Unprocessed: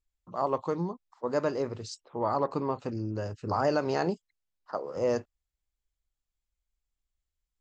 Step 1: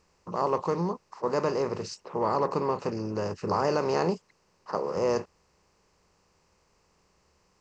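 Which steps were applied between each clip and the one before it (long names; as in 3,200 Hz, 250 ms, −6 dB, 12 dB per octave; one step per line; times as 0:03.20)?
compressor on every frequency bin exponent 0.6
EQ curve with evenly spaced ripples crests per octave 0.81, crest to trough 6 dB
level −1.5 dB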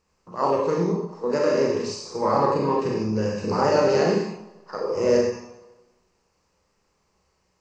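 four-comb reverb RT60 1.2 s, combs from 29 ms, DRR −2 dB
noise reduction from a noise print of the clip's start 9 dB
every ending faded ahead of time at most 260 dB per second
level +3 dB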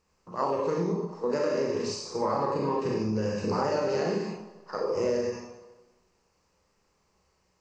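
downward compressor 10 to 1, threshold −22 dBFS, peak gain reduction 8.5 dB
level −1.5 dB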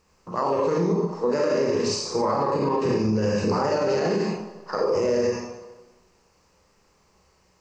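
brickwall limiter −23 dBFS, peak gain reduction 8 dB
level +8.5 dB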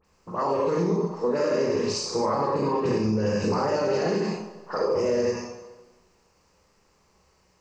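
all-pass dispersion highs, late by 50 ms, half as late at 2,900 Hz
level −1.5 dB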